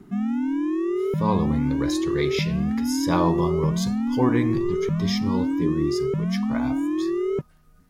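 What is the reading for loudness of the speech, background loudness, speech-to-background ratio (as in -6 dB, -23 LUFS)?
-27.5 LUFS, -25.0 LUFS, -2.5 dB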